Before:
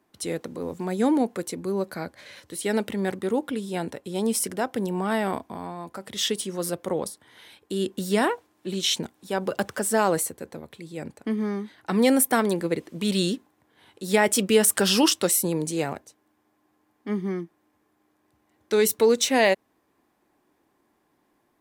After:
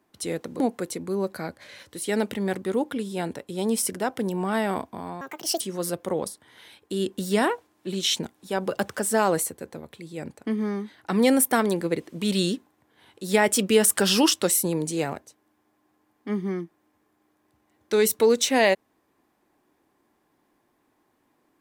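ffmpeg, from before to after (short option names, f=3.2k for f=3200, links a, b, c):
-filter_complex "[0:a]asplit=4[a][b][c][d];[a]atrim=end=0.602[e];[b]atrim=start=1.168:end=5.784[f];[c]atrim=start=5.78:end=6.4,asetpts=PTS-STARTPTS,asetrate=69678,aresample=44100,atrim=end_sample=17305,asetpts=PTS-STARTPTS[g];[d]atrim=start=6.396[h];[e][f]acrossfade=d=0.004:c1=hsin:c2=hsin[i];[i][g]acrossfade=d=0.004:c1=hsin:c2=hsin[j];[j][h]acrossfade=d=0.004:c1=hsin:c2=hsin"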